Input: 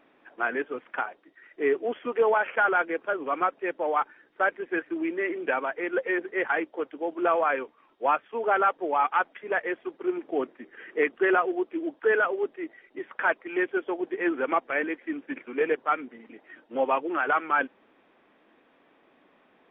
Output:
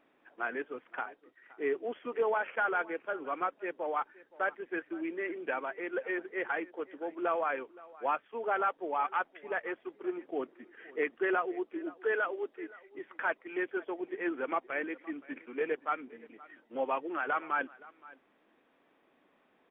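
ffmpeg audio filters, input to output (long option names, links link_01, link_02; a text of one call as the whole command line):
ffmpeg -i in.wav -filter_complex "[0:a]asettb=1/sr,asplit=3[link_01][link_02][link_03];[link_01]atrim=end=12.004[link_04];[link_02]atrim=start=12:end=12.57,asetpts=PTS-STARTPTS,afade=type=in:duration=0.004:curve=qsin,afade=type=out:start_time=0.566:duration=0.004:curve=qsin,bass=frequency=250:gain=-7,treble=frequency=4000:gain=5[link_05];[link_03]atrim=start=12.566[link_06];[link_04][link_05]acrossfade=duration=0.004:curve1=hsin:curve2=qsin[link_07];[link_07][link_06]acrossfade=duration=0.004:curve1=qsin:curve2=hsin,aecho=1:1:520:0.0891,volume=-7.5dB" out.wav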